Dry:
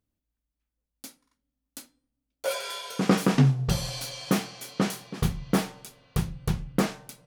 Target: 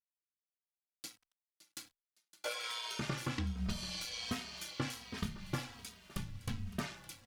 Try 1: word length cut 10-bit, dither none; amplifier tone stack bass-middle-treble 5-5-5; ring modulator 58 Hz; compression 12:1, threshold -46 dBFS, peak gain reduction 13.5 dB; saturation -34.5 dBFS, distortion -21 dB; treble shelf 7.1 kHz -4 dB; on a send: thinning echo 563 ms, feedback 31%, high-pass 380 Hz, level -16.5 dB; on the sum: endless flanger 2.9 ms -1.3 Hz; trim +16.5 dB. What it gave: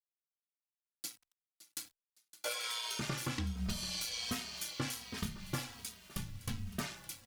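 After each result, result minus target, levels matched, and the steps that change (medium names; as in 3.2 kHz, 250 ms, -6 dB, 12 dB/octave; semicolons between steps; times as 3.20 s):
saturation: distortion +16 dB; 8 kHz band +4.0 dB
change: saturation -23.5 dBFS, distortion -37 dB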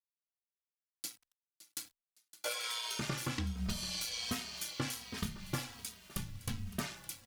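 8 kHz band +4.0 dB
change: treble shelf 7.1 kHz -15.5 dB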